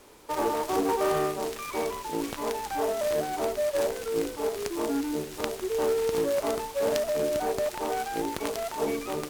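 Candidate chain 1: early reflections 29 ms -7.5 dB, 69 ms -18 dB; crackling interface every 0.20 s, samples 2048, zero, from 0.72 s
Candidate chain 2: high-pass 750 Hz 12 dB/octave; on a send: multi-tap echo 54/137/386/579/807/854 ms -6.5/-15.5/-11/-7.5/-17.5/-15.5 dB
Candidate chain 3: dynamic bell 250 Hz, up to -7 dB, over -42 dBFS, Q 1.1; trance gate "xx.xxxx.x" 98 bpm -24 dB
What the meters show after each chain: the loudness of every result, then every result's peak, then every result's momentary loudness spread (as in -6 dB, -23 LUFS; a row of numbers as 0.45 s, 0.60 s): -29.0 LUFS, -32.5 LUFS, -32.0 LUFS; -9.0 dBFS, -7.0 dBFS, -9.0 dBFS; 6 LU, 4 LU, 7 LU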